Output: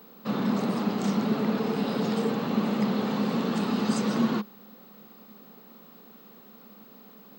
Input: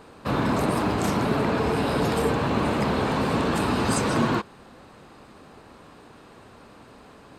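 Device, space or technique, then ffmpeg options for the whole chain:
old television with a line whistle: -af "highpass=frequency=170:width=0.5412,highpass=frequency=170:width=1.3066,equalizer=frequency=210:width_type=q:width=4:gain=10,equalizer=frequency=310:width_type=q:width=4:gain=-6,equalizer=frequency=640:width_type=q:width=4:gain=-5,equalizer=frequency=980:width_type=q:width=4:gain=-6,equalizer=frequency=1600:width_type=q:width=4:gain=-6,equalizer=frequency=2400:width_type=q:width=4:gain=-5,lowpass=frequency=6900:width=0.5412,lowpass=frequency=6900:width=1.3066,aeval=exprs='val(0)+0.00398*sin(2*PI*15734*n/s)':channel_layout=same,volume=-3.5dB"

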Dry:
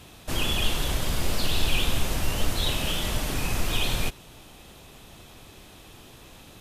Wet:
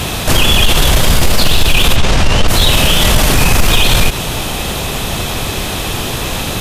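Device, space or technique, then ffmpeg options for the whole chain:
mastering chain: -filter_complex "[0:a]equalizer=frequency=300:width_type=o:width=0.58:gain=-3.5,acompressor=threshold=-23dB:ratio=2.5,asoftclip=type=tanh:threshold=-16.5dB,asoftclip=type=hard:threshold=-20.5dB,alimiter=level_in=31dB:limit=-1dB:release=50:level=0:latency=1,asplit=3[link_01][link_02][link_03];[link_01]afade=type=out:start_time=1.95:duration=0.02[link_04];[link_02]lowpass=6000,afade=type=in:start_time=1.95:duration=0.02,afade=type=out:start_time=2.47:duration=0.02[link_05];[link_03]afade=type=in:start_time=2.47:duration=0.02[link_06];[link_04][link_05][link_06]amix=inputs=3:normalize=0,volume=-1dB"

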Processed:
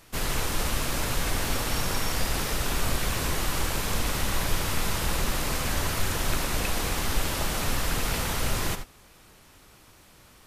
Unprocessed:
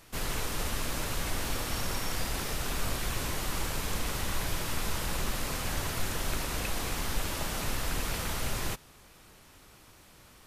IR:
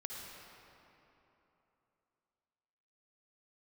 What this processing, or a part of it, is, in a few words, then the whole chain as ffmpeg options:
keyed gated reverb: -filter_complex "[0:a]asplit=3[link_01][link_02][link_03];[1:a]atrim=start_sample=2205[link_04];[link_02][link_04]afir=irnorm=-1:irlink=0[link_05];[link_03]apad=whole_len=461624[link_06];[link_05][link_06]sidechaingate=range=-33dB:threshold=-42dB:ratio=16:detection=peak,volume=-2dB[link_07];[link_01][link_07]amix=inputs=2:normalize=0,volume=1.5dB"

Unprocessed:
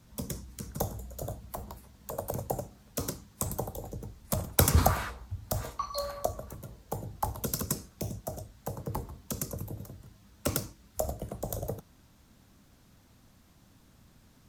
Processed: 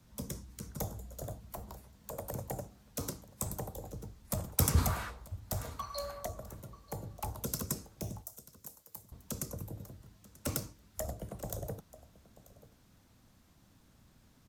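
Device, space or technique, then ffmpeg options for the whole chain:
one-band saturation: -filter_complex "[0:a]asettb=1/sr,asplit=3[link_01][link_02][link_03];[link_01]atrim=end=8.224[link_04];[link_02]atrim=start=8.22:end=9.12,asetpts=PTS-STARTPTS,afade=type=in:duration=0.004:curve=qsin,afade=type=out:start_time=0.896:duration=0.004:curve=qsin,aderivative[link_05];[link_03]atrim=start=9.116[link_06];[link_04][link_05]acrossfade=duration=0.004:curve1=hsin:curve2=qsin[link_07];[link_07][link_06]acrossfade=duration=0.004:curve1=qsin:curve2=hsin,aecho=1:1:937:0.0944,acrossover=split=270|4600[link_08][link_09][link_10];[link_09]asoftclip=type=tanh:threshold=-28dB[link_11];[link_08][link_11][link_10]amix=inputs=3:normalize=0,volume=-4dB"

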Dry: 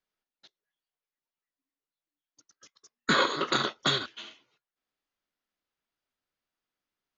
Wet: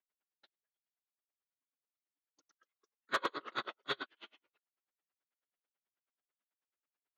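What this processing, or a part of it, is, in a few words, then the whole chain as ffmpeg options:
helicopter radio: -af "highpass=330,lowpass=2800,aeval=exprs='val(0)*pow(10,-39*(0.5-0.5*cos(2*PI*9.2*n/s))/20)':channel_layout=same,asoftclip=type=hard:threshold=-25dB"

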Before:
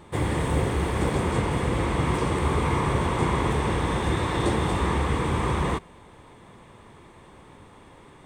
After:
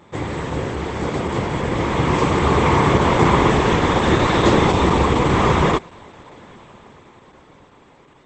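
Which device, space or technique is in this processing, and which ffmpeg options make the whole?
video call: -filter_complex "[0:a]asettb=1/sr,asplit=3[link_01][link_02][link_03];[link_01]atrim=end=4.734[link_04];[link_02]atrim=start=4.73:end=5.25,asetpts=PTS-STARTPTS,afade=type=in:duration=0.004:curve=qsin,afade=type=out:start_time=0.516:duration=0.004:curve=qsin,adynamicequalizer=threshold=0.00355:dfrequency=1600:dqfactor=2.7:tfrequency=1600:tqfactor=2.7:attack=5:release=100:ratio=0.375:range=3:mode=cutabove:tftype=bell[link_05];[link_03]atrim=start=5.246[link_06];[link_04][link_05]acrossfade=duration=0.004:curve1=hsin:curve2=qsin[link_07];[link_07][link_06]acrossfade=duration=0.004:curve1=qsin:curve2=hsin,highpass=frequency=120:poles=1,dynaudnorm=framelen=240:gausssize=17:maxgain=12dB,volume=2dB" -ar 48000 -c:a libopus -b:a 12k

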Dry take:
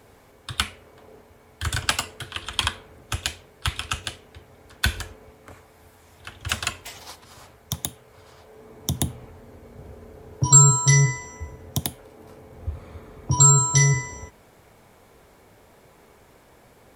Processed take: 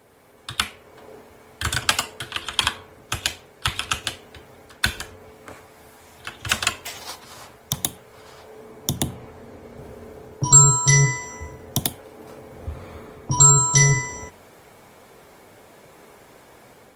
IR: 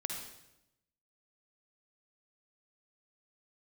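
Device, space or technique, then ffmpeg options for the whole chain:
video call: -filter_complex "[0:a]bandreject=frequency=92.02:width_type=h:width=4,bandreject=frequency=184.04:width_type=h:width=4,bandreject=frequency=276.06:width_type=h:width=4,bandreject=frequency=368.08:width_type=h:width=4,bandreject=frequency=460.1:width_type=h:width=4,bandreject=frequency=552.12:width_type=h:width=4,bandreject=frequency=644.14:width_type=h:width=4,bandreject=frequency=736.16:width_type=h:width=4,bandreject=frequency=828.18:width_type=h:width=4,bandreject=frequency=920.2:width_type=h:width=4,bandreject=frequency=1012.22:width_type=h:width=4,bandreject=frequency=1104.24:width_type=h:width=4,asettb=1/sr,asplit=3[link_01][link_02][link_03];[link_01]atrim=end=8.964[link_04];[link_02]atrim=start=8.96:end=9.77,asetpts=PTS-STARTPTS,afade=type=in:duration=0.004:curve=qsin,afade=type=out:start_time=0.806:duration=0.004:curve=qsin,highshelf=frequency=9100:gain=-6[link_05];[link_03]atrim=start=9.766[link_06];[link_04][link_05]acrossfade=duration=0.004:curve1=hsin:curve2=qsin[link_07];[link_07][link_06]acrossfade=duration=0.004:curve1=qsin:curve2=hsin,highpass=frequency=150:poles=1,dynaudnorm=framelen=110:gausssize=5:maxgain=6dB" -ar 48000 -c:a libopus -b:a 24k

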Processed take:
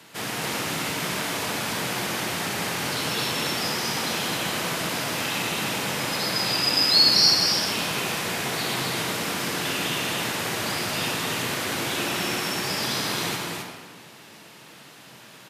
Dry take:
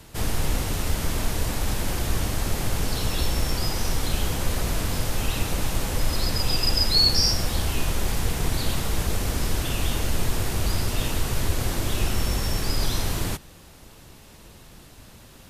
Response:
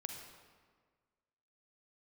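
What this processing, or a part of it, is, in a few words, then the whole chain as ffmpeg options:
stadium PA: -filter_complex "[0:a]highpass=frequency=150:width=0.5412,highpass=frequency=150:width=1.3066,equalizer=frequency=2100:width_type=o:width=2.7:gain=7.5,aecho=1:1:209.9|262.4:0.355|0.631[link_01];[1:a]atrim=start_sample=2205[link_02];[link_01][link_02]afir=irnorm=-1:irlink=0"

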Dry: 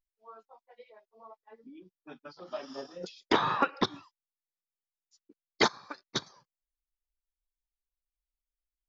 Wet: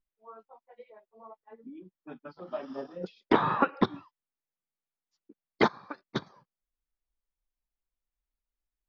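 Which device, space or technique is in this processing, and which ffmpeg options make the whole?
phone in a pocket: -af "lowpass=3500,equalizer=frequency=200:width_type=o:width=0.87:gain=4,highshelf=frequency=2200:gain=-9,volume=3dB"

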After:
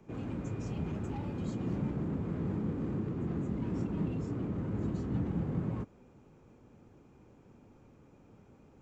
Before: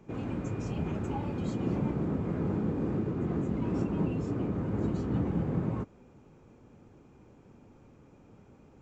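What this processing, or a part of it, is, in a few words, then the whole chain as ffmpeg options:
one-band saturation: -filter_complex "[0:a]acrossover=split=290|5000[link_01][link_02][link_03];[link_02]asoftclip=type=tanh:threshold=-39dB[link_04];[link_01][link_04][link_03]amix=inputs=3:normalize=0,volume=-2.5dB"

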